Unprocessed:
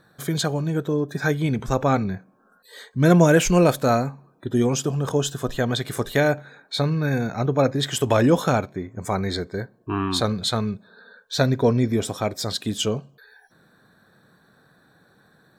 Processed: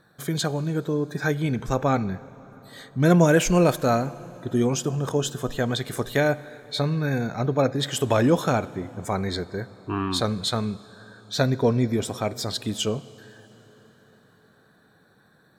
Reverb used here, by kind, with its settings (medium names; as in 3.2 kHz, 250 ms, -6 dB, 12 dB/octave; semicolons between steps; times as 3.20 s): plate-style reverb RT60 4.9 s, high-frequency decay 0.7×, DRR 18 dB; trim -2 dB